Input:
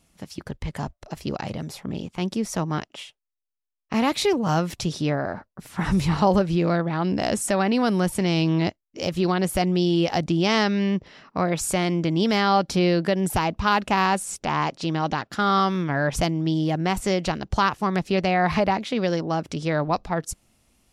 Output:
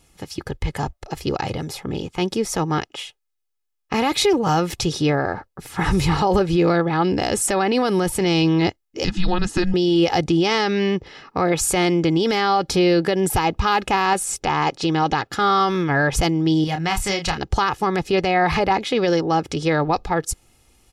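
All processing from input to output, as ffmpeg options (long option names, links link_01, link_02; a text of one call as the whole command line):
ffmpeg -i in.wav -filter_complex "[0:a]asettb=1/sr,asplit=3[link_01][link_02][link_03];[link_01]atrim=end=9.044[link_04];[link_02]atrim=start=9.04:end=9.74,asetpts=PTS-STARTPTS,afade=type=in:duration=0.004:curve=qsin,afade=type=out:start_time=0.696:duration=0.004:curve=qsin,lowpass=frequency=7600:width=0.5412,lowpass=frequency=7600:width=1.3066,bandreject=frequency=2600:width=7.6,afreqshift=-370[link_05];[link_03]atrim=start=9.736[link_06];[link_04][link_05]acrossfade=duration=0.004:curve1=hsin:curve2=qsin[link_07];[link_07][link_06]acrossfade=duration=0.004:curve1=qsin:curve2=hsin,asettb=1/sr,asplit=3[link_08][link_09][link_10];[link_08]atrim=end=16.644[link_11];[link_09]atrim=start=16.64:end=17.38,asetpts=PTS-STARTPTS,afade=type=in:duration=0.004:curve=qsin,afade=type=out:start_time=0.736:duration=0.004:curve=qsin,equalizer=frequency=400:width=0.95:gain=-12,asplit=2[link_12][link_13];[link_13]adelay=30,volume=-7dB[link_14];[link_12][link_14]amix=inputs=2:normalize=0,atrim=end_sample=32634[link_15];[link_10]atrim=start=17.376[link_16];[link_11][link_15]acrossfade=duration=0.004:curve1=hsin:curve2=qsin[link_17];[link_17][link_16]acrossfade=duration=0.004:curve1=qsin:curve2=hsin,aecho=1:1:2.4:0.5,alimiter=limit=-15dB:level=0:latency=1:release=21,volume=5.5dB" out.wav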